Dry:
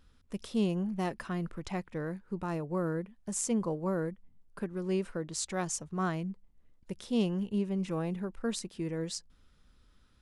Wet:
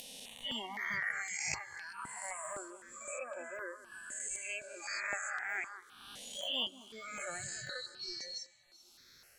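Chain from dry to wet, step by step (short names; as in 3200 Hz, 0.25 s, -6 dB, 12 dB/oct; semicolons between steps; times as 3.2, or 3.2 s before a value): spectral swells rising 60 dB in 2.69 s; differentiator; treble ducked by the level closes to 2300 Hz, closed at -35 dBFS; in parallel at -10 dB: sample-rate reducer 1900 Hz, jitter 0%; on the sum: spectral noise reduction 26 dB; speed mistake 44.1 kHz file played as 48 kHz; upward compressor, threshold -50 dBFS; bell 2600 Hz +7 dB 1.2 oct; on a send: echo with dull and thin repeats by turns 0.193 s, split 2400 Hz, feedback 64%, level -14 dB; on the sum: step phaser 3.9 Hz 340–4100 Hz; gain +12.5 dB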